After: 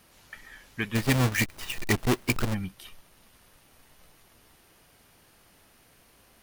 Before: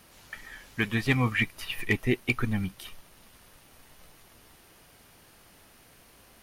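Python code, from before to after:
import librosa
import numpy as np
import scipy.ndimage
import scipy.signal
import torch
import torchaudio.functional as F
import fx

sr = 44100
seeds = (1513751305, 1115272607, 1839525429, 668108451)

y = fx.halfwave_hold(x, sr, at=(0.94, 2.53), fade=0.02)
y = y * 10.0 ** (-3.0 / 20.0)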